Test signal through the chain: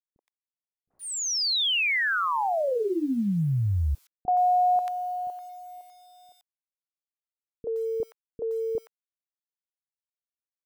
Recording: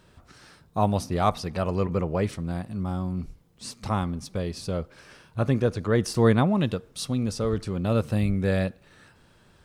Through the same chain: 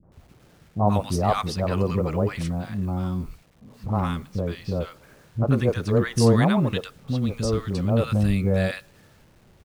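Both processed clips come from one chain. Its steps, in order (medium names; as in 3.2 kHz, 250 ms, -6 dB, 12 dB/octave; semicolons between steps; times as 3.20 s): level-controlled noise filter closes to 580 Hz, open at -22 dBFS; bit crusher 10-bit; three bands offset in time lows, mids, highs 30/120 ms, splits 330/1100 Hz; trim +3.5 dB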